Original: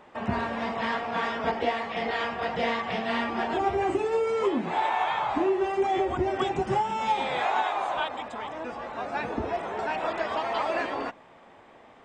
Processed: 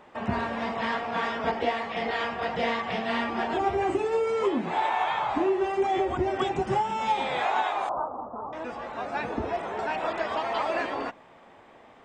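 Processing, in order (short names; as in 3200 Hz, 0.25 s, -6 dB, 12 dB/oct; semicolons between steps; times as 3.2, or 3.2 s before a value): 7.89–8.53 steep low-pass 1300 Hz 72 dB/oct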